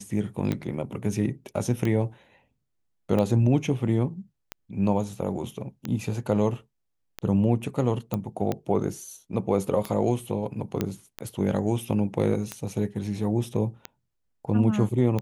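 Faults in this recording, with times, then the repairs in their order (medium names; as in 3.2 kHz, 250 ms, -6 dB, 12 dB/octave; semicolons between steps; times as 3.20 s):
tick 45 rpm -15 dBFS
8.14 s: pop -15 dBFS
10.81 s: pop -12 dBFS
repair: de-click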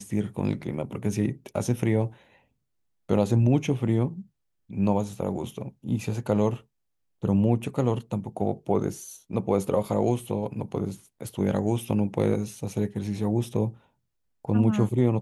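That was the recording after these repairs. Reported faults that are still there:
nothing left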